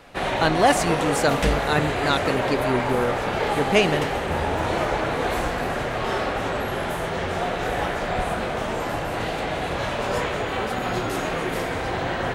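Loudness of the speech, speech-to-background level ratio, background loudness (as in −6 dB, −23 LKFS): −24.0 LKFS, 1.0 dB, −25.0 LKFS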